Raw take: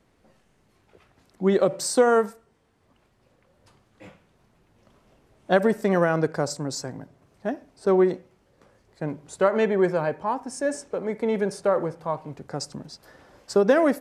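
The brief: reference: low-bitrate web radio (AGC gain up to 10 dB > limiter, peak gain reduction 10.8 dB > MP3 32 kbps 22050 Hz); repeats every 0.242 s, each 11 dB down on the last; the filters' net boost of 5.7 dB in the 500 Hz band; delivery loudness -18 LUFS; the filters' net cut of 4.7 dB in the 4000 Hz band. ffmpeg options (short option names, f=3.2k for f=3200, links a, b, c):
-af "equalizer=f=500:t=o:g=7,equalizer=f=4k:t=o:g=-6.5,aecho=1:1:242|484|726:0.282|0.0789|0.0221,dynaudnorm=m=10dB,alimiter=limit=-13dB:level=0:latency=1,volume=6.5dB" -ar 22050 -c:a libmp3lame -b:a 32k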